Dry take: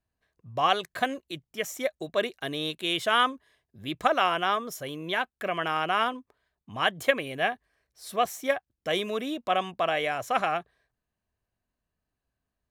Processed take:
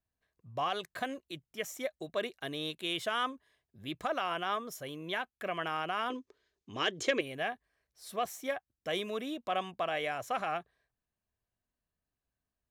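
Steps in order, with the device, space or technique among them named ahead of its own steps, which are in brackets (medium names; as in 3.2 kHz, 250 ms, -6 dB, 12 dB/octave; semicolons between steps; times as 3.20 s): soft clipper into limiter (saturation -8.5 dBFS, distortion -28 dB; peak limiter -17 dBFS, peak gain reduction 6.5 dB); 6.10–7.21 s: FFT filter 200 Hz 0 dB, 390 Hz +14 dB, 710 Hz -2 dB, 6.5 kHz +12 dB, 13 kHz -17 dB; trim -6 dB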